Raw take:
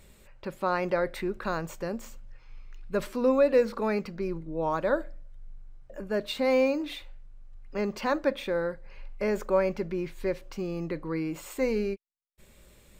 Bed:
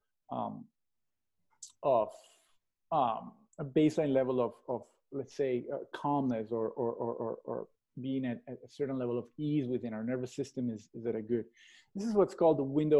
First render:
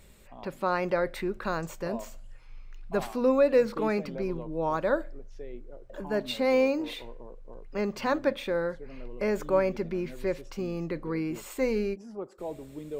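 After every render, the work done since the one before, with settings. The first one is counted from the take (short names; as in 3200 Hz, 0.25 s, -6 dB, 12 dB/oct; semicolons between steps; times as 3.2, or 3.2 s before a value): add bed -11 dB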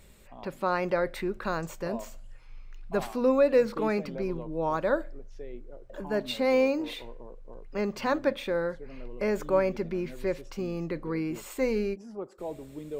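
nothing audible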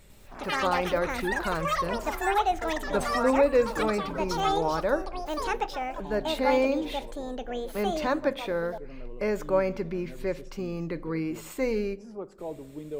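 shoebox room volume 3400 m³, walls furnished, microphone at 0.43 m; echoes that change speed 0.103 s, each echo +7 st, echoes 3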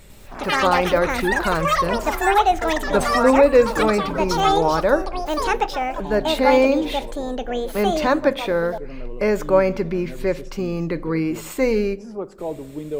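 gain +8.5 dB; limiter -3 dBFS, peak gain reduction 1.5 dB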